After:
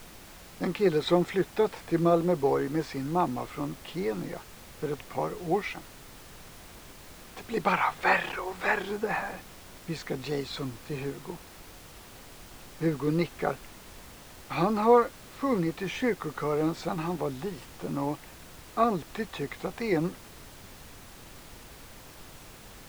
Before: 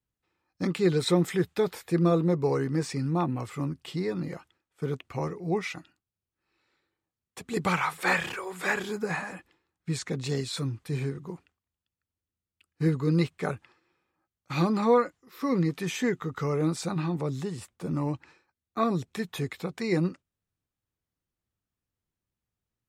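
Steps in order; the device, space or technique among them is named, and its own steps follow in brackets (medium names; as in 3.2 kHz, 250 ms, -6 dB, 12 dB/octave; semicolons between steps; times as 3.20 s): horn gramophone (band-pass 210–4000 Hz; peaking EQ 750 Hz +6 dB 0.77 oct; wow and flutter; pink noise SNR 17 dB)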